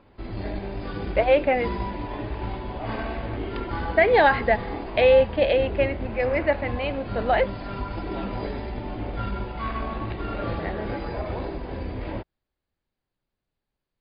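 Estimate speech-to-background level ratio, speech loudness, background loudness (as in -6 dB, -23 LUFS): 9.5 dB, -22.5 LUFS, -32.0 LUFS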